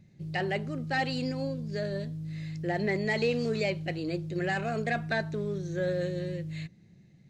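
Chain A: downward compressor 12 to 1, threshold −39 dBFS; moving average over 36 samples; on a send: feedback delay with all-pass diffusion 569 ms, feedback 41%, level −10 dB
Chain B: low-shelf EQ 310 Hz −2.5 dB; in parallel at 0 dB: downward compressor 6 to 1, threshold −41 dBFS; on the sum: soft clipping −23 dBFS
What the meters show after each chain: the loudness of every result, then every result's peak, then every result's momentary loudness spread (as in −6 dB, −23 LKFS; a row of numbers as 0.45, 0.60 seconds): −43.5, −32.0 LKFS; −32.0, −23.5 dBFS; 3, 6 LU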